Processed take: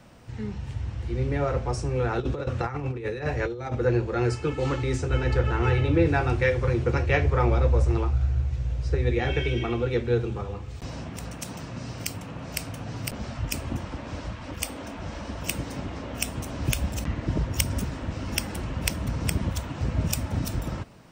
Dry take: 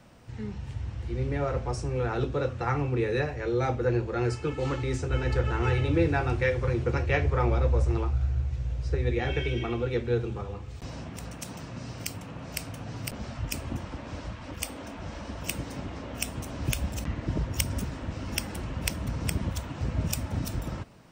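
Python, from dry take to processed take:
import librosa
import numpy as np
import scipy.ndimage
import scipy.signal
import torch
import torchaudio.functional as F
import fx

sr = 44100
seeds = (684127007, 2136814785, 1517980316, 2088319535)

y = fx.over_compress(x, sr, threshold_db=-31.0, ratio=-0.5, at=(2.2, 3.75))
y = fx.high_shelf(y, sr, hz=fx.line((5.16, 11000.0), (6.05, 5500.0)), db=-9.5, at=(5.16, 6.05), fade=0.02)
y = y * librosa.db_to_amplitude(3.0)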